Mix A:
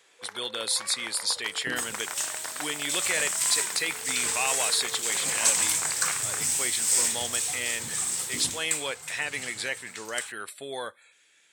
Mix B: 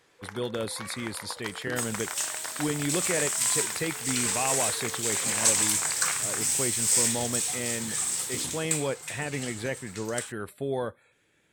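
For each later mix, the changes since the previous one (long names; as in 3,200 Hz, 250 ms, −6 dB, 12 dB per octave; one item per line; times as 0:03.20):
speech: remove meter weighting curve ITU-R 468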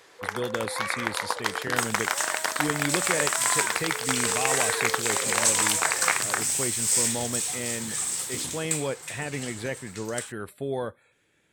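first sound +11.0 dB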